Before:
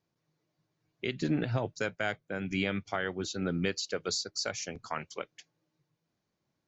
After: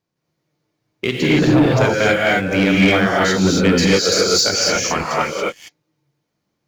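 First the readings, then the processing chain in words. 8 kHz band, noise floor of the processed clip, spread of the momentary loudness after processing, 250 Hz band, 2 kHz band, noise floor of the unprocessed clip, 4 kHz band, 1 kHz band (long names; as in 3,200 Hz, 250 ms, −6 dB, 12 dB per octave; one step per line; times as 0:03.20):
can't be measured, −75 dBFS, 7 LU, +19.0 dB, +18.0 dB, −83 dBFS, +18.5 dB, +19.0 dB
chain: reverb whose tail is shaped and stops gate 300 ms rising, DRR −5 dB
leveller curve on the samples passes 2
level +6 dB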